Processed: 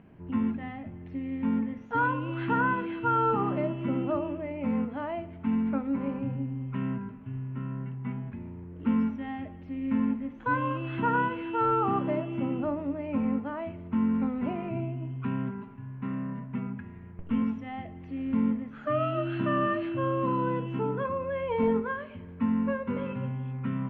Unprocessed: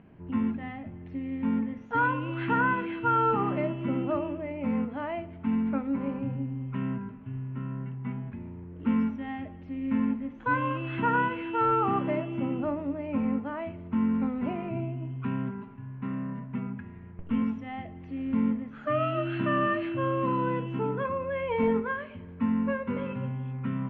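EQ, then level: dynamic EQ 2200 Hz, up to -5 dB, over -45 dBFS, Q 1.6; 0.0 dB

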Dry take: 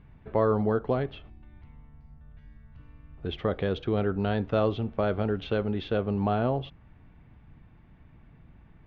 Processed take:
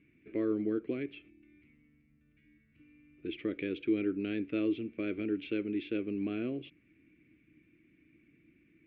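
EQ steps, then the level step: double band-pass 860 Hz, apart 2.9 oct; +6.0 dB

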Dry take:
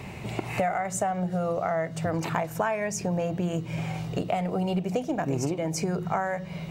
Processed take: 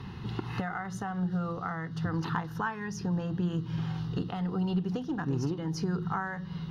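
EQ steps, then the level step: air absorption 56 m; fixed phaser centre 2300 Hz, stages 6; 0.0 dB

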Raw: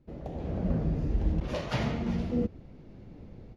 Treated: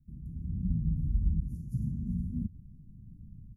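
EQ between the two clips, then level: inverse Chebyshev band-stop 580–3700 Hz, stop band 60 dB; 0.0 dB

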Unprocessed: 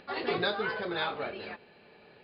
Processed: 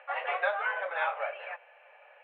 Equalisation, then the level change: Chebyshev high-pass 530 Hz, order 6; steep low-pass 2900 Hz 48 dB/oct; air absorption 140 m; +4.5 dB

